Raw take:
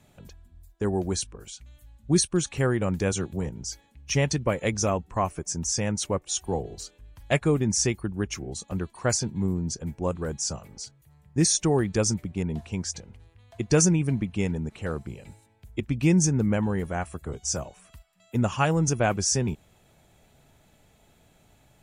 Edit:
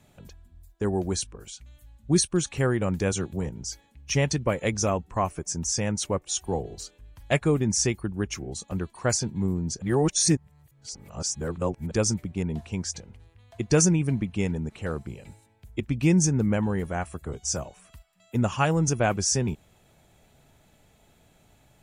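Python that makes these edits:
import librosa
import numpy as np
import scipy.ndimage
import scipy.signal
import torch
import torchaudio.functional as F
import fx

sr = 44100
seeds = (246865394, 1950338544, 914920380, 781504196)

y = fx.edit(x, sr, fx.reverse_span(start_s=9.82, length_s=2.09), tone=tone)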